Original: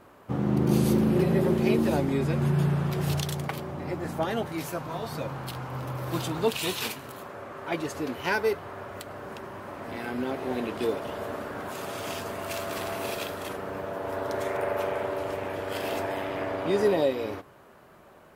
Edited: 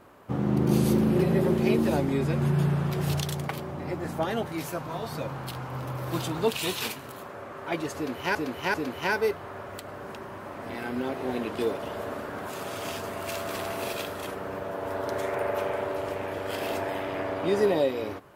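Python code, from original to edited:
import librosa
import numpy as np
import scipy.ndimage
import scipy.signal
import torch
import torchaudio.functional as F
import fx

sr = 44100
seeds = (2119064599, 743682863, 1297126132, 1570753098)

y = fx.edit(x, sr, fx.repeat(start_s=7.96, length_s=0.39, count=3), tone=tone)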